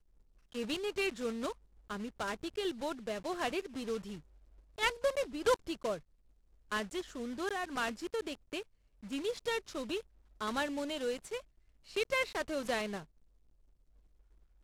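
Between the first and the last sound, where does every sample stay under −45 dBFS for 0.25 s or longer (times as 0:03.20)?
0:01.53–0:01.90
0:04.19–0:04.78
0:05.98–0:06.72
0:08.62–0:09.03
0:10.01–0:10.41
0:11.40–0:11.90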